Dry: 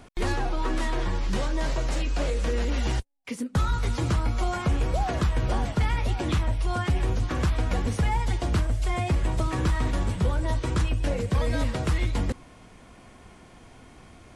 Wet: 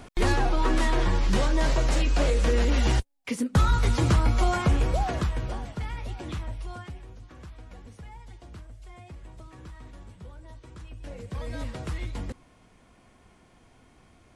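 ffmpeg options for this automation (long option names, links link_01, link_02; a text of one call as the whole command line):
ffmpeg -i in.wav -af "volume=15.5dB,afade=type=out:start_time=4.5:duration=1.11:silence=0.237137,afade=type=out:start_time=6.58:duration=0.45:silence=0.281838,afade=type=in:start_time=10.8:duration=0.85:silence=0.251189" out.wav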